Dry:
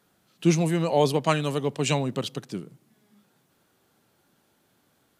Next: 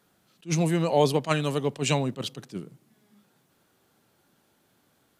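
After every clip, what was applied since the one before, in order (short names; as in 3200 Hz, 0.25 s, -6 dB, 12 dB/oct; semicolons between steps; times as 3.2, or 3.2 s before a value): attack slew limiter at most 340 dB/s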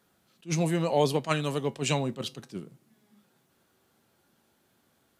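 resonator 75 Hz, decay 0.18 s, harmonics odd, mix 50%; gain +2 dB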